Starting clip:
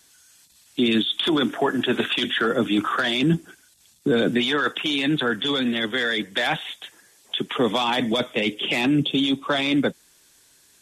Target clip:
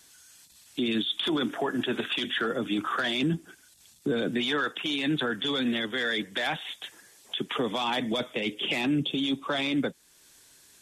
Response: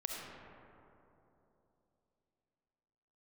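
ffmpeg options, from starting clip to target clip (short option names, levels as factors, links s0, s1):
-af "alimiter=limit=0.112:level=0:latency=1:release=423"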